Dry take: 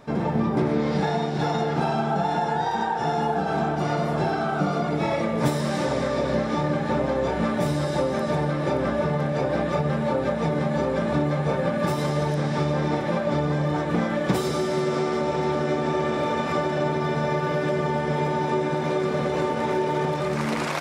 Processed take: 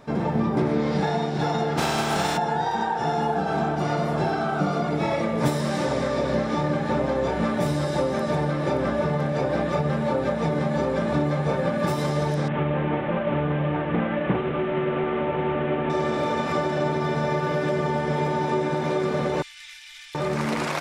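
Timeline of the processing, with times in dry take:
1.77–2.36 s: spectral contrast reduction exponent 0.53
12.48–15.90 s: CVSD coder 16 kbps
19.42–20.15 s: inverse Chebyshev band-stop 160–550 Hz, stop band 80 dB

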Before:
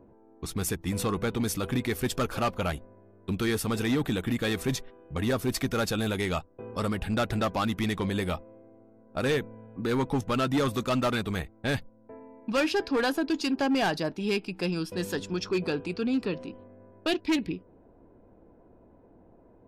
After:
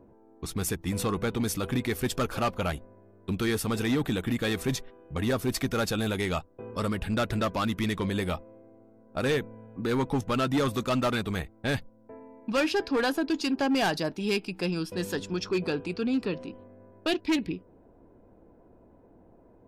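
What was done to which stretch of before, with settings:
6.70–8.17 s: band-stop 770 Hz, Q 8.2
13.74–14.60 s: treble shelf 4.9 kHz +5 dB

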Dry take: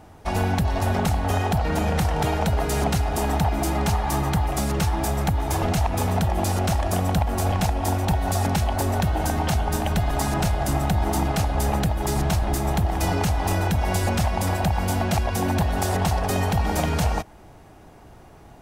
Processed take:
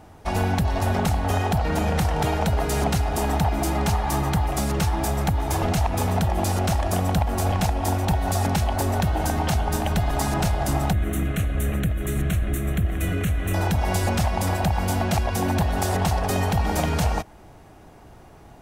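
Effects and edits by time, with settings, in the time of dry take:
10.93–13.54 s: static phaser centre 2.1 kHz, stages 4

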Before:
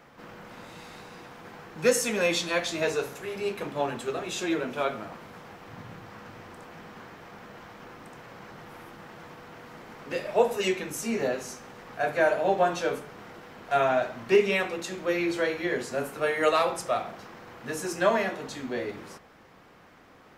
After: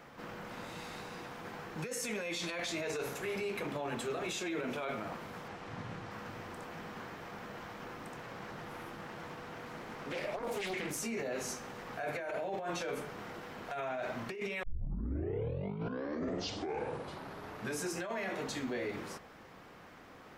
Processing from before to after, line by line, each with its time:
5.48–6.11 s: low-pass 8.8 kHz
8.16–11.00 s: loudspeaker Doppler distortion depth 0.74 ms
14.63 s: tape start 3.31 s
whole clip: dynamic bell 2.2 kHz, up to +6 dB, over -51 dBFS, Q 6; compressor with a negative ratio -30 dBFS, ratio -1; peak limiter -25.5 dBFS; trim -3.5 dB

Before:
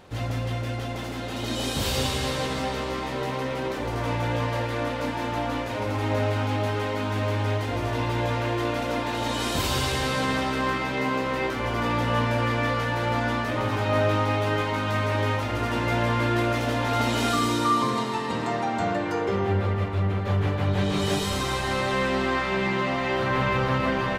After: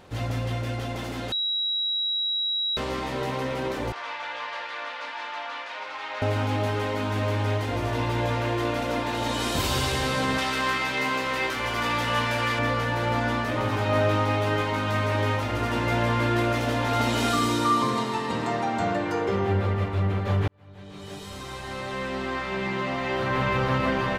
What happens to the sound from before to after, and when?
1.32–2.77 s: bleep 3.87 kHz -23.5 dBFS
3.92–6.22 s: Butterworth band-pass 2.2 kHz, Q 0.56
10.38–12.59 s: tilt shelf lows -6 dB
20.48–23.76 s: fade in

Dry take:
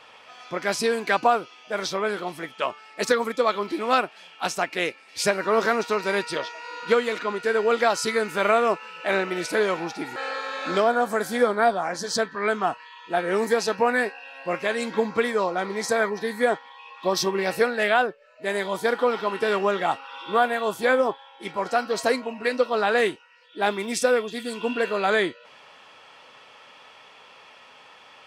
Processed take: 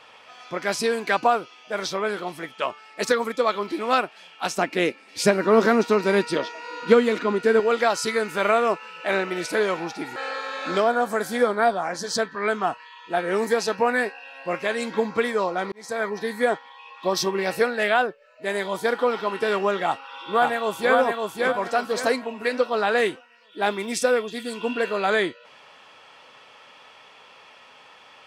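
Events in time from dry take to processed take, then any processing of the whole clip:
4.58–7.60 s: peaking EQ 250 Hz +10.5 dB 1.6 oct
15.72–16.16 s: fade in
19.85–20.96 s: echo throw 560 ms, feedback 35%, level -2.5 dB

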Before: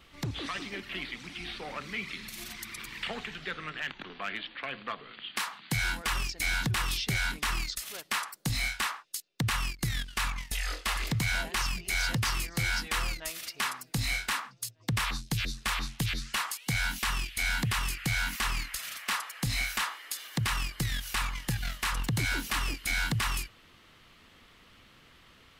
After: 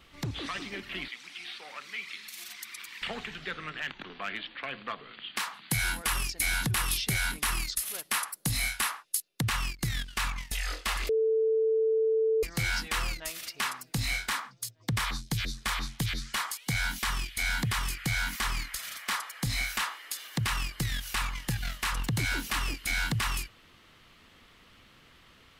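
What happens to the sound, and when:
1.08–3.02 s: high-pass 1.5 kHz 6 dB/octave
5.54–9.45 s: peaking EQ 11 kHz +13 dB 0.47 oct
11.09–12.43 s: bleep 443 Hz -22.5 dBFS
14.18–19.73 s: band-stop 2.7 kHz

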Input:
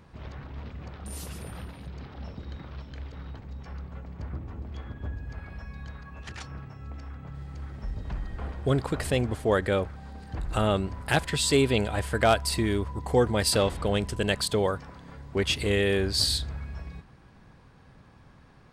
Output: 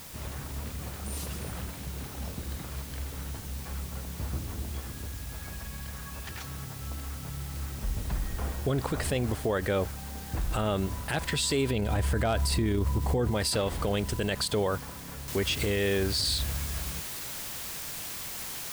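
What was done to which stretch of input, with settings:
4.79–6.60 s: compression, threshold -37 dBFS
11.71–13.31 s: bass shelf 360 Hz +8 dB
15.28 s: noise floor step -48 dB -40 dB
whole clip: peak limiter -21 dBFS; trim +2 dB

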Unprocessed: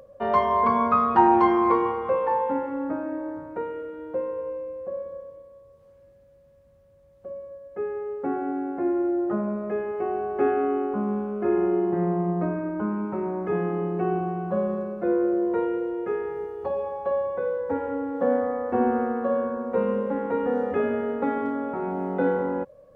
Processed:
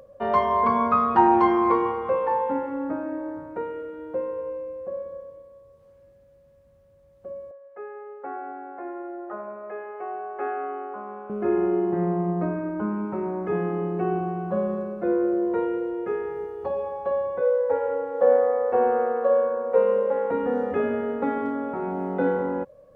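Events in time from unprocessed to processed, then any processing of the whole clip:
7.51–11.30 s: three-band isolator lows -23 dB, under 510 Hz, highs -12 dB, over 2.4 kHz
17.41–20.31 s: resonant low shelf 380 Hz -8 dB, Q 3

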